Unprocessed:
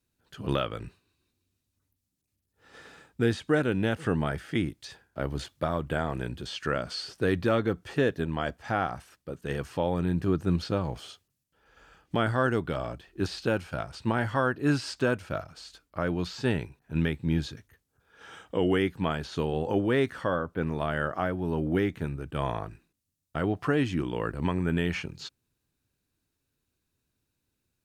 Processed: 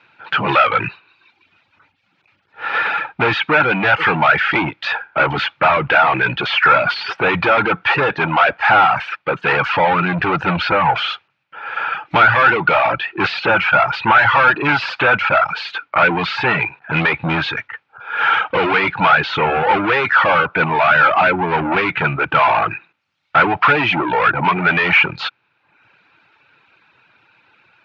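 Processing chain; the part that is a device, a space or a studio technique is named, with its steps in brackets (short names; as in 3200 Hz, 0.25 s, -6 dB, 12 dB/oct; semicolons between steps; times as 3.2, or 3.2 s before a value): 23.94–24.56 air absorption 210 m; overdrive pedal into a guitar cabinet (overdrive pedal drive 36 dB, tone 3500 Hz, clips at -11 dBFS; speaker cabinet 110–3600 Hz, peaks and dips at 120 Hz +3 dB, 250 Hz -8 dB, 400 Hz -4 dB, 870 Hz +9 dB, 1400 Hz +10 dB, 2400 Hz +10 dB); reverb removal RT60 0.78 s; gain +2 dB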